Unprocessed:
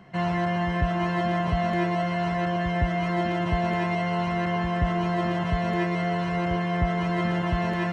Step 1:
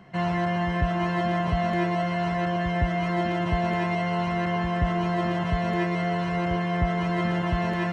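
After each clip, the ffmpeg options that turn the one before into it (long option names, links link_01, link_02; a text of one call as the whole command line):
ffmpeg -i in.wav -af anull out.wav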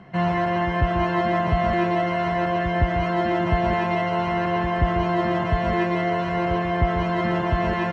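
ffmpeg -i in.wav -filter_complex "[0:a]aemphasis=mode=reproduction:type=50fm,asplit=2[link_01][link_02];[link_02]aecho=0:1:139.9|174.9:0.316|0.251[link_03];[link_01][link_03]amix=inputs=2:normalize=0,volume=4dB" out.wav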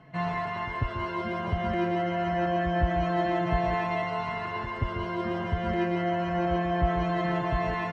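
ffmpeg -i in.wav -filter_complex "[0:a]asplit=2[link_01][link_02];[link_02]adelay=4.2,afreqshift=-0.26[link_03];[link_01][link_03]amix=inputs=2:normalize=1,volume=-3dB" out.wav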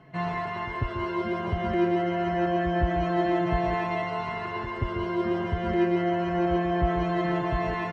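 ffmpeg -i in.wav -af "equalizer=frequency=370:width_type=o:width=0.21:gain=9.5" out.wav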